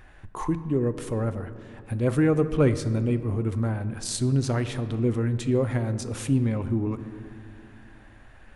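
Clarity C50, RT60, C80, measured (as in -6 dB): 12.5 dB, 2.3 s, 13.5 dB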